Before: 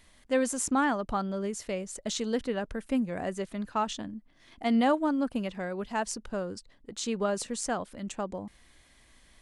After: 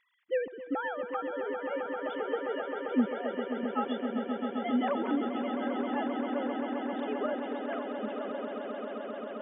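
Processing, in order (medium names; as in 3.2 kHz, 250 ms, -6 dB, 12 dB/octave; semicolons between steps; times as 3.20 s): formants replaced by sine waves; on a send: echo with a slow build-up 132 ms, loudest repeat 8, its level -9.5 dB; on the sum: trim -5.5 dB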